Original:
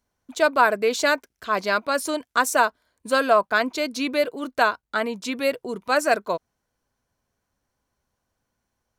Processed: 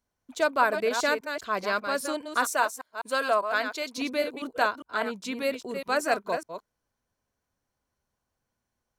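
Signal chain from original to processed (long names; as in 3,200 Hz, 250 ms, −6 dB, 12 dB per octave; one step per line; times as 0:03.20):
delay that plays each chunk backwards 201 ms, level −7.5 dB
0:02.49–0:03.98: high-pass filter 470 Hz 6 dB per octave
level −5.5 dB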